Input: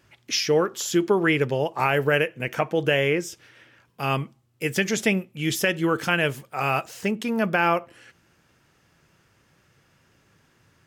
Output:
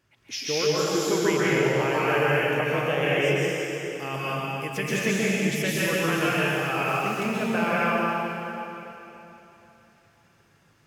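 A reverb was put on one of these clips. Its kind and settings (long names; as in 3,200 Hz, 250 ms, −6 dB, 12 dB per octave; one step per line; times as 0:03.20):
dense smooth reverb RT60 3.3 s, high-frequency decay 0.95×, pre-delay 115 ms, DRR −8.5 dB
level −9 dB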